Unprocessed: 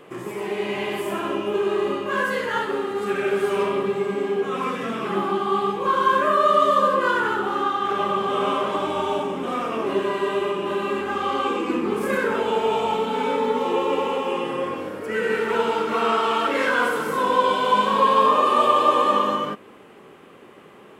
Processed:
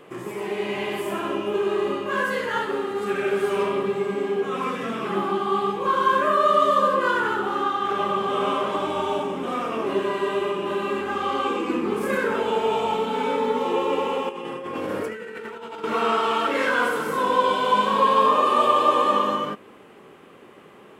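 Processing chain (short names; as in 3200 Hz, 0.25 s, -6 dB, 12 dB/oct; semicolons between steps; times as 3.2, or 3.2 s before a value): 14.29–15.84 negative-ratio compressor -32 dBFS, ratio -1; gain -1 dB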